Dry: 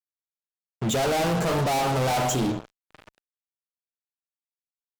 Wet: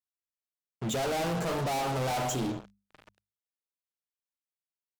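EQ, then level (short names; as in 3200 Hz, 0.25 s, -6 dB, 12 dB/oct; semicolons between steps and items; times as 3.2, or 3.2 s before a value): notches 50/100/150/200 Hz; -6.5 dB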